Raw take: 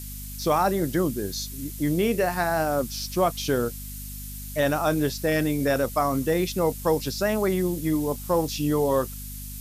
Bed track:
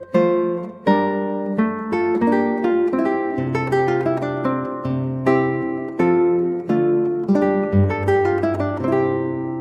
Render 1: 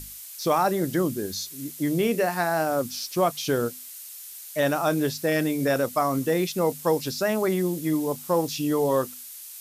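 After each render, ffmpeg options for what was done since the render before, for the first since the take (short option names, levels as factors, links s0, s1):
-af "bandreject=f=50:t=h:w=6,bandreject=f=100:t=h:w=6,bandreject=f=150:t=h:w=6,bandreject=f=200:t=h:w=6,bandreject=f=250:t=h:w=6"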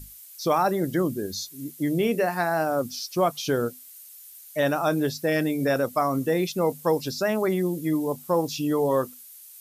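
-af "afftdn=nr=9:nf=-41"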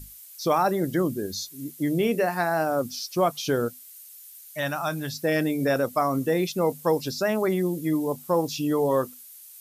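-filter_complex "[0:a]asettb=1/sr,asplit=3[s0][s1][s2];[s0]atrim=end=3.684[s3];[s1]atrim=start=3.68:end=5.14,asetpts=PTS-STARTPTS,afade=t=in:d=0.004:c=qsin,afade=t=out:st=1.456:d=0.004:c=qsin,equalizer=f=400:w=1.3:g=-14.5[s4];[s2]atrim=start=5.136[s5];[s3][s4]acrossfade=d=0.004:c1=hsin:c2=qsin[s6];[s6][s5]acrossfade=d=0.004:c1=qsin:c2=hsin"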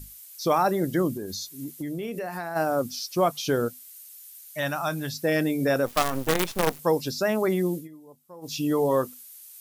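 -filter_complex "[0:a]asplit=3[s0][s1][s2];[s0]afade=t=out:st=1.16:d=0.02[s3];[s1]acompressor=threshold=0.0355:ratio=6:attack=3.2:release=140:knee=1:detection=peak,afade=t=in:st=1.16:d=0.02,afade=t=out:st=2.55:d=0.02[s4];[s2]afade=t=in:st=2.55:d=0.02[s5];[s3][s4][s5]amix=inputs=3:normalize=0,asplit=3[s6][s7][s8];[s6]afade=t=out:st=5.85:d=0.02[s9];[s7]acrusher=bits=4:dc=4:mix=0:aa=0.000001,afade=t=in:st=5.85:d=0.02,afade=t=out:st=6.78:d=0.02[s10];[s8]afade=t=in:st=6.78:d=0.02[s11];[s9][s10][s11]amix=inputs=3:normalize=0,asplit=3[s12][s13][s14];[s12]atrim=end=7.88,asetpts=PTS-STARTPTS,afade=t=out:st=7.75:d=0.13:silence=0.0749894[s15];[s13]atrim=start=7.88:end=8.41,asetpts=PTS-STARTPTS,volume=0.075[s16];[s14]atrim=start=8.41,asetpts=PTS-STARTPTS,afade=t=in:d=0.13:silence=0.0749894[s17];[s15][s16][s17]concat=n=3:v=0:a=1"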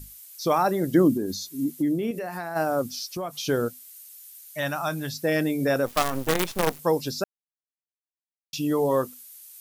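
-filter_complex "[0:a]asettb=1/sr,asplit=3[s0][s1][s2];[s0]atrim=end=0.934[s3];[s1]atrim=start=0.93:end=2.11,asetpts=PTS-STARTPTS,afade=t=in:d=0.004:c=qsin,afade=t=out:st=1.176:d=0.004:c=qsin,equalizer=f=270:w=1.5:g=10.5[s4];[s2]atrim=start=2.106[s5];[s3][s4]acrossfade=d=0.004:c1=hsin:c2=qsin[s6];[s6][s5]acrossfade=d=0.004:c1=qsin:c2=hsin,asettb=1/sr,asplit=3[s7][s8][s9];[s7]atrim=end=2.984[s10];[s8]atrim=start=2.98:end=3.4,asetpts=PTS-STARTPTS,afade=t=in:d=0.004:c=qsin,afade=t=out:st=0.416:d=0.004:c=qsin,acompressor=threshold=0.0398:ratio=6:attack=3.2:release=140:knee=1:detection=peak[s11];[s9]atrim=start=3.396[s12];[s10][s11]acrossfade=d=0.004:c1=hsin:c2=qsin[s13];[s13][s12]acrossfade=d=0.004:c1=qsin:c2=hsin,asplit=3[s14][s15][s16];[s14]atrim=end=7.24,asetpts=PTS-STARTPTS,afade=t=out:st=7.236:d=0.004:c=hsin[s17];[s15]atrim=start=7.24:end=8.53,asetpts=PTS-STARTPTS,volume=0[s18];[s16]atrim=start=8.53,asetpts=PTS-STARTPTS,afade=t=in:d=0.004:c=hsin[s19];[s17][s18][s19]concat=n=3:v=0:a=1"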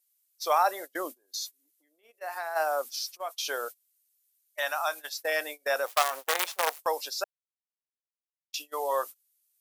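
-af "highpass=f=620:w=0.5412,highpass=f=620:w=1.3066,agate=range=0.0447:threshold=0.0141:ratio=16:detection=peak"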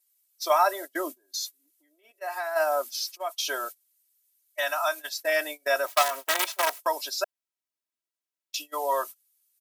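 -af "highpass=150,aecho=1:1:3.1:0.97"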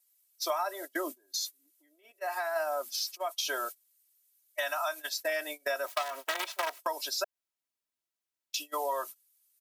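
-filter_complex "[0:a]acrossover=split=490|5300[s0][s1][s2];[s2]alimiter=limit=0.075:level=0:latency=1:release=250[s3];[s0][s1][s3]amix=inputs=3:normalize=0,acompressor=threshold=0.0355:ratio=6"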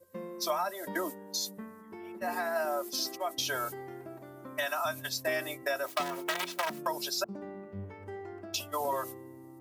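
-filter_complex "[1:a]volume=0.0531[s0];[0:a][s0]amix=inputs=2:normalize=0"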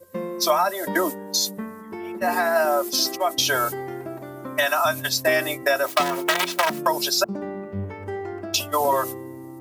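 -af "volume=3.76"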